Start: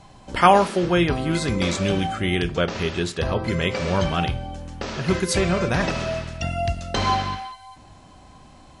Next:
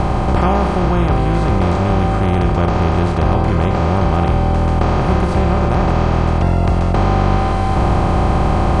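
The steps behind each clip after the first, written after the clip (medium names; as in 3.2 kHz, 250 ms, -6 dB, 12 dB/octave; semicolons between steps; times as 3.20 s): spectral levelling over time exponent 0.2; RIAA curve playback; gain riding 0.5 s; trim -8.5 dB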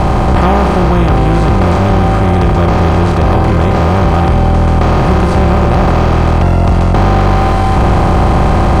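waveshaping leveller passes 2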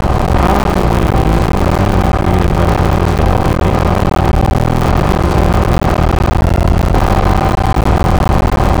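cycle switcher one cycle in 3, muted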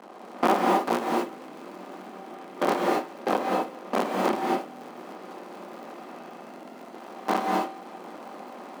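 gate with hold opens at -2 dBFS; elliptic high-pass 230 Hz, stop band 80 dB; gated-style reverb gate 280 ms rising, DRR -0.5 dB; trim -8 dB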